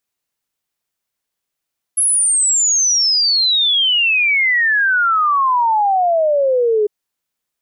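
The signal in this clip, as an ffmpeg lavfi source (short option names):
-f lavfi -i "aevalsrc='0.266*clip(min(t,4.9-t)/0.01,0,1)*sin(2*PI*11000*4.9/log(410/11000)*(exp(log(410/11000)*t/4.9)-1))':d=4.9:s=44100"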